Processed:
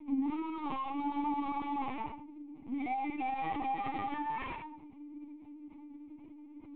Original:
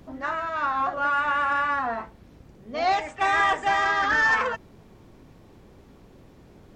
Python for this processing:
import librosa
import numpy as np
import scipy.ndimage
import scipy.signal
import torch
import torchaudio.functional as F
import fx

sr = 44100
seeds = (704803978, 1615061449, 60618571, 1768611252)

p1 = fx.peak_eq(x, sr, hz=160.0, db=-8.0, octaves=0.77)
p2 = fx.leveller(p1, sr, passes=3)
p3 = (np.mod(10.0 ** (24.5 / 20.0) * p2 + 1.0, 2.0) - 1.0) / 10.0 ** (24.5 / 20.0)
p4 = p2 + (p3 * 10.0 ** (-10.0 / 20.0))
p5 = fx.cheby_harmonics(p4, sr, harmonics=(3, 5), levels_db=(-7, -12), full_scale_db=-10.5)
p6 = fx.add_hum(p5, sr, base_hz=60, snr_db=11)
p7 = fx.vowel_filter(p6, sr, vowel='u')
p8 = p7 + fx.echo_single(p7, sr, ms=89, db=-6.5, dry=0)
p9 = fx.room_shoebox(p8, sr, seeds[0], volume_m3=730.0, walls='furnished', distance_m=2.1)
y = fx.lpc_vocoder(p9, sr, seeds[1], excitation='pitch_kept', order=16)